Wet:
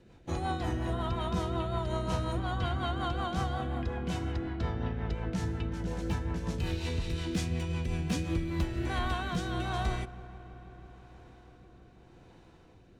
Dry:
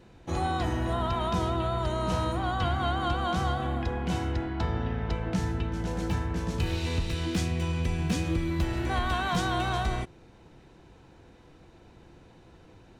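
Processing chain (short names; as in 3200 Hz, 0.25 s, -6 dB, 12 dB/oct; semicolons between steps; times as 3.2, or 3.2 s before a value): rotary speaker horn 5.5 Hz, later 0.85 Hz, at 8.15; on a send: dark delay 0.162 s, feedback 85%, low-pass 2100 Hz, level -20 dB; on the sum: gain -2 dB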